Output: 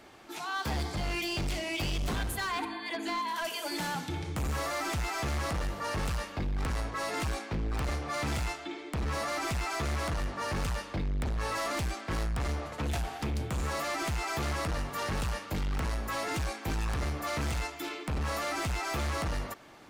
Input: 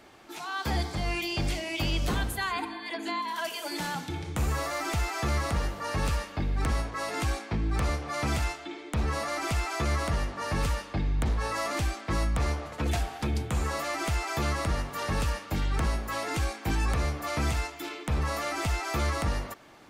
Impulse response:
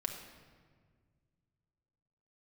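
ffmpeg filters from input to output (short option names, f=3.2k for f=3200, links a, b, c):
-af "asoftclip=type=hard:threshold=-29dB"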